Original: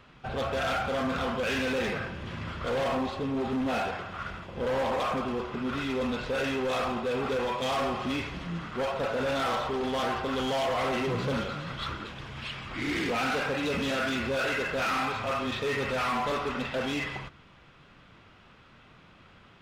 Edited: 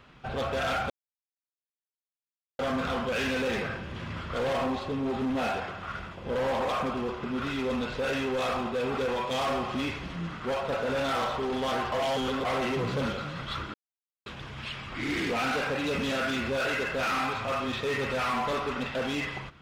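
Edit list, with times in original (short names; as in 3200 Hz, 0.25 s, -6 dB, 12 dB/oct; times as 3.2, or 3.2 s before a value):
0.9 insert silence 1.69 s
10.23–10.76 reverse
12.05 insert silence 0.52 s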